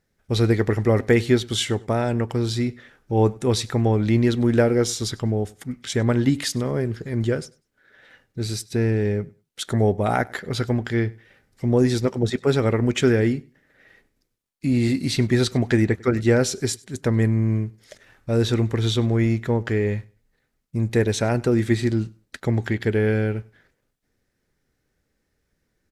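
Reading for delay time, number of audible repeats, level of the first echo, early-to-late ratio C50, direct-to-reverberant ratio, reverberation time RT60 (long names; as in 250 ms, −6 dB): 98 ms, 1, −24.0 dB, no reverb audible, no reverb audible, no reverb audible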